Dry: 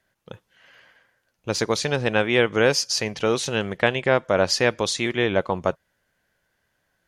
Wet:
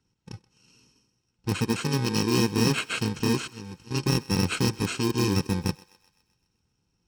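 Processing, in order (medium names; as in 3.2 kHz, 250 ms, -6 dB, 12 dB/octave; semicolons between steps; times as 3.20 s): bit-reversed sample order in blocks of 64 samples; low-pass 7.4 kHz 24 dB/octave; tilt EQ -1.5 dB/octave; 1.73–2.23 s: high-pass 150 Hz 6 dB/octave; 3.41–3.91 s: slow attack 729 ms; in parallel at -11 dB: integer overflow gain 17.5 dB; on the sum: comb of notches 580 Hz; on a send: thinning echo 128 ms, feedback 58%, high-pass 530 Hz, level -20 dB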